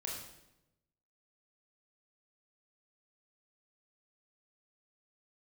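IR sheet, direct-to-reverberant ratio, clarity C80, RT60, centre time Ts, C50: -2.5 dB, 5.5 dB, 0.90 s, 51 ms, 2.5 dB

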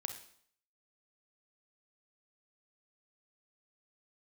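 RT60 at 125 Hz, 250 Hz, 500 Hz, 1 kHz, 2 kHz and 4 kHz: 0.55, 0.60, 0.60, 0.60, 0.60, 0.60 s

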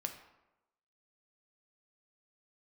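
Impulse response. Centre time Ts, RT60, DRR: 17 ms, 1.0 s, 4.5 dB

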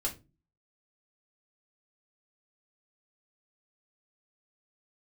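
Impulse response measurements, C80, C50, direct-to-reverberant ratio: 21.0 dB, 14.0 dB, -3.0 dB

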